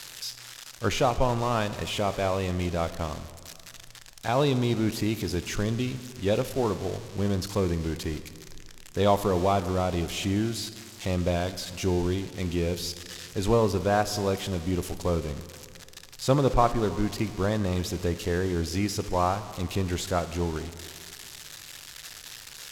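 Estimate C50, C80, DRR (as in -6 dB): 13.0 dB, 14.0 dB, 12.0 dB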